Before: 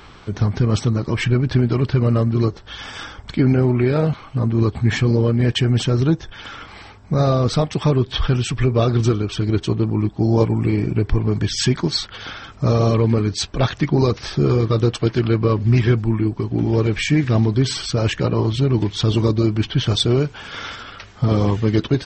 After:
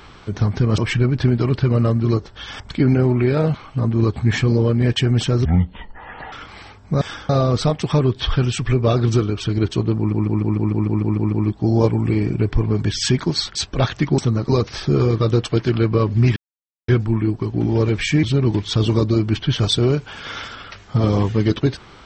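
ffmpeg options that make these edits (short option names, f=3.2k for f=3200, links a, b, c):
-filter_complex "[0:a]asplit=21[a][b][c][d][e][f][g][h][i][j][k][l][m][n][o][p][q][r][s][t][u];[a]atrim=end=0.782[v];[b]atrim=start=1.088:end=2.912[w];[c]atrim=start=3.188:end=6.044[x];[d]atrim=start=6.04:end=6.52,asetpts=PTS-STARTPTS,asetrate=24255,aresample=44100,atrim=end_sample=38487,asetpts=PTS-STARTPTS[y];[e]atrim=start=6.516:end=7.212[z];[f]atrim=start=2.908:end=3.192[aa];[g]atrim=start=7.208:end=10.042[ab];[h]atrim=start=9.888:end=10.042[ac];[i]atrim=start=9.888:end=10.042[ad];[j]atrim=start=9.888:end=10.042[ae];[k]atrim=start=9.888:end=10.042[af];[l]atrim=start=9.888:end=10.042[ag];[m]atrim=start=9.888:end=10.042[ah];[n]atrim=start=9.888:end=10.042[ai];[o]atrim=start=9.888:end=10.042[aj];[p]atrim=start=9.888:end=12.122[ak];[q]atrim=start=13.358:end=13.992[al];[r]atrim=start=0.778:end=1.092[am];[s]atrim=start=13.988:end=15.86,asetpts=PTS-STARTPTS,afade=t=out:st=1.868:d=0.004:c=hsin,apad=pad_dur=0.52[an];[t]atrim=start=15.86:end=17.212,asetpts=PTS-STARTPTS,afade=t=in:d=0.004:c=hsin[ao];[u]atrim=start=18.508[ap];[v][w]acrossfade=d=0.004:c1=hsin:c2=hsin[aq];[aq][x]acrossfade=d=0.004:c1=hsin:c2=hsin[ar];[ar][y]acrossfade=d=0.004:c1=hsin:c2=hsin[as];[as][z]acrossfade=d=0.004:c1=hsin:c2=hsin[at];[at][aa]acrossfade=d=0.004:c1=hsin:c2=hsin[au];[au][ab]acrossfade=d=0.004:c1=hsin:c2=hsin[av];[av][ac]acrossfade=d=0.004:c1=hsin:c2=hsin[aw];[aw][ad]acrossfade=d=0.004:c1=hsin:c2=hsin[ax];[ax][ae]acrossfade=d=0.004:c1=hsin:c2=hsin[ay];[ay][af]acrossfade=d=0.004:c1=hsin:c2=hsin[az];[az][ag]acrossfade=d=0.004:c1=hsin:c2=hsin[ba];[ba][ah]acrossfade=d=0.004:c1=hsin:c2=hsin[bb];[bb][ai]acrossfade=d=0.004:c1=hsin:c2=hsin[bc];[bc][aj]acrossfade=d=0.004:c1=hsin:c2=hsin[bd];[bd][ak]acrossfade=d=0.004:c1=hsin:c2=hsin[be];[be][al]acrossfade=d=0.004:c1=hsin:c2=hsin[bf];[bf][am]acrossfade=d=0.004:c1=hsin:c2=hsin[bg];[an][ao]concat=n=2:v=0:a=1[bh];[bg][bh]acrossfade=d=0.004:c1=hsin:c2=hsin[bi];[bi][ap]acrossfade=d=0.004:c1=hsin:c2=hsin"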